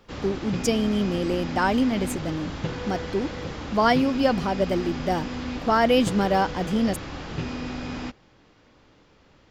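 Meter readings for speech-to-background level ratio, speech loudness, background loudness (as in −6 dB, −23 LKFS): 8.5 dB, −24.5 LKFS, −33.0 LKFS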